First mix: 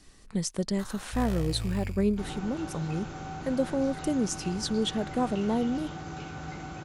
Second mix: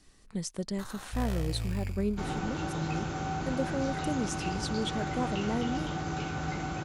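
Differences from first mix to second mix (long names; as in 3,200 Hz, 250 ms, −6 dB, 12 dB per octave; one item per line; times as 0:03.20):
speech −5.0 dB
second sound +5.0 dB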